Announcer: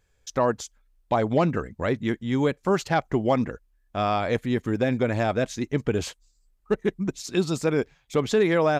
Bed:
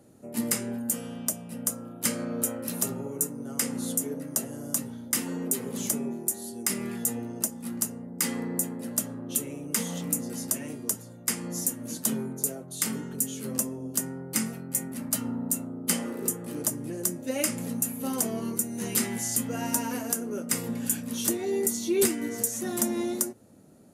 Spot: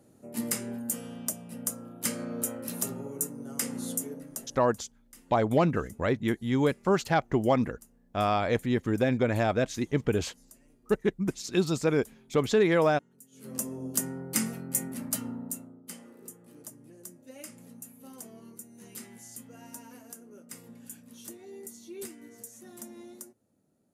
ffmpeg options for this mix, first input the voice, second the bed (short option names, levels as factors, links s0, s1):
-filter_complex "[0:a]adelay=4200,volume=0.794[s0];[1:a]volume=13.3,afade=t=out:st=3.93:d=0.73:silence=0.0707946,afade=t=in:st=13.31:d=0.51:silence=0.0501187,afade=t=out:st=14.82:d=1.01:silence=0.141254[s1];[s0][s1]amix=inputs=2:normalize=0"